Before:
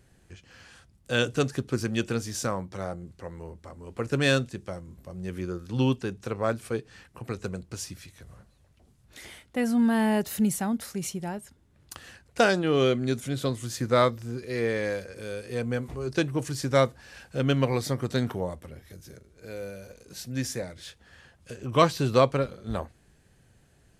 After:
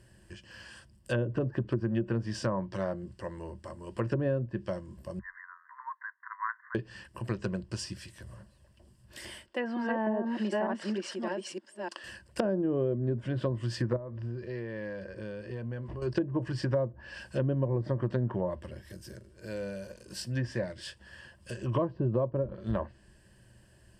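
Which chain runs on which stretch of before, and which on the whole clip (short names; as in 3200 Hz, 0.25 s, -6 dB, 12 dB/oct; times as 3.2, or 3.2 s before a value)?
5.19–6.75 brick-wall FIR band-pass 930–2100 Hz + mismatched tape noise reduction encoder only
9.46–12.04 reverse delay 0.303 s, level -1.5 dB + HPF 300 Hz 24 dB/oct + air absorption 85 m
13.96–16.02 compressor 5:1, threshold -34 dBFS + tape spacing loss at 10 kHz 25 dB
whole clip: treble ducked by the level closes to 580 Hz, closed at -22 dBFS; ripple EQ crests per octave 1.3, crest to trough 10 dB; compressor, threshold -25 dBFS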